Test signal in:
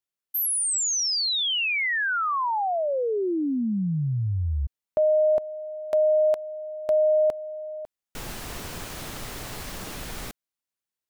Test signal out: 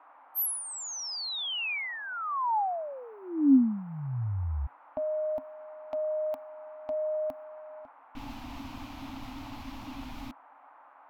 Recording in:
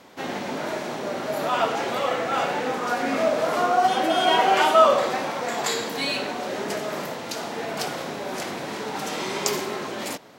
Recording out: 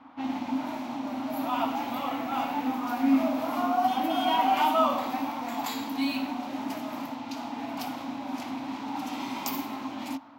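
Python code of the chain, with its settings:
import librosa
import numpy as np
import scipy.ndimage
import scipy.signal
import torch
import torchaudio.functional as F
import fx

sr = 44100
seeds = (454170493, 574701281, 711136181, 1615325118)

y = fx.env_lowpass(x, sr, base_hz=2700.0, full_db=-23.0)
y = fx.dmg_noise_band(y, sr, seeds[0], low_hz=440.0, high_hz=1600.0, level_db=-49.0)
y = fx.curve_eq(y, sr, hz=(120.0, 180.0, 270.0, 400.0, 860.0, 1700.0, 2400.0, 9000.0, 15000.0), db=(0, -10, 15, -19, 5, -9, -1, -9, 14))
y = y * librosa.db_to_amplitude(-5.5)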